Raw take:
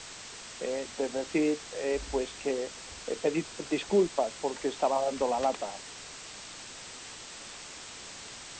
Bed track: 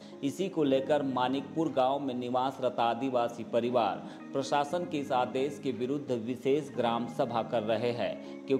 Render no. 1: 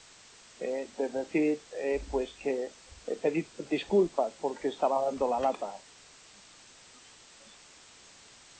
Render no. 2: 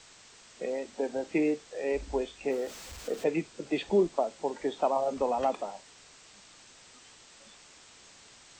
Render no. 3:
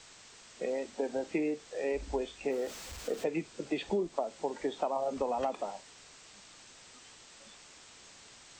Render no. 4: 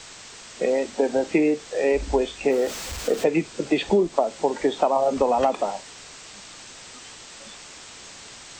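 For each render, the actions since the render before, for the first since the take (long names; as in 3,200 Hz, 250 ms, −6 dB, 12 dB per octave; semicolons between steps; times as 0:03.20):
noise reduction from a noise print 10 dB
0:02.51–0:03.24: converter with a step at zero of −43 dBFS
downward compressor 6 to 1, threshold −28 dBFS, peak gain reduction 8.5 dB
level +12 dB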